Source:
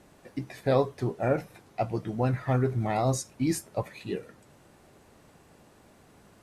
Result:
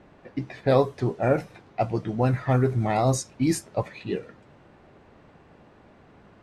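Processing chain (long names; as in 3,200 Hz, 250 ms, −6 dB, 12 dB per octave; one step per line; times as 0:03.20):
low-pass that shuts in the quiet parts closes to 2,700 Hz, open at −20.5 dBFS
level +4 dB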